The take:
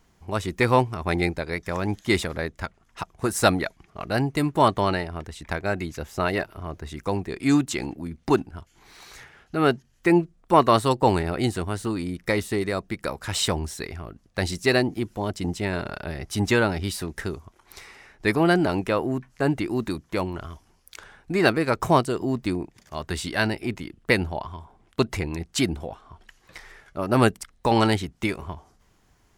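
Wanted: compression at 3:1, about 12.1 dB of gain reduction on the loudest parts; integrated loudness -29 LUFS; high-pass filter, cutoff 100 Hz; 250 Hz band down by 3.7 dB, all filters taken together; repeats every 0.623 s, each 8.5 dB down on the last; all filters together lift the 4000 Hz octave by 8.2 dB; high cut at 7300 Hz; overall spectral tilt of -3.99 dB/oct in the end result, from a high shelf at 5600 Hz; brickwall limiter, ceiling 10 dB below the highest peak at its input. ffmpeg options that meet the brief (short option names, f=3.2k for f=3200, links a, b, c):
-af "highpass=100,lowpass=7.3k,equalizer=f=250:t=o:g=-5,equalizer=f=4k:t=o:g=8.5,highshelf=f=5.6k:g=4,acompressor=threshold=-29dB:ratio=3,alimiter=limit=-20.5dB:level=0:latency=1,aecho=1:1:623|1246|1869|2492:0.376|0.143|0.0543|0.0206,volume=5.5dB"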